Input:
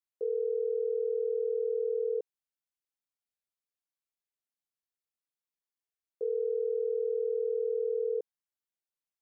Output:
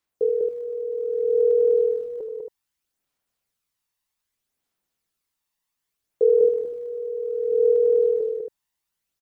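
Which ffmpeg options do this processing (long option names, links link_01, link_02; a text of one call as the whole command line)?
ffmpeg -i in.wav -filter_complex "[0:a]asettb=1/sr,asplit=3[link_01][link_02][link_03];[link_01]atrim=end=6.454[link_04];[link_02]atrim=start=6.45:end=7.52,asetpts=PTS-STARTPTS,afade=type=in:duration=0.004:curve=qsin,afade=type=out:start_time=1.066:duration=0.004:curve=qsin,bass=frequency=250:gain=-8,treble=frequency=4000:gain=1[link_05];[link_03]atrim=start=7.516[link_06];[link_04][link_05]acrossfade=duration=0.004:curve1=hsin:curve2=qsin[link_07];[link_07][link_06]acrossfade=duration=0.004:curve1=qsin:curve2=hsin,aphaser=in_gain=1:out_gain=1:delay=1.1:decay=0.54:speed=0.64:type=sinusoidal,asplit=2[link_08][link_09];[link_09]aecho=0:1:78.72|198.3|274.1:0.316|0.708|0.398[link_10];[link_08][link_10]amix=inputs=2:normalize=0,volume=8.5dB" out.wav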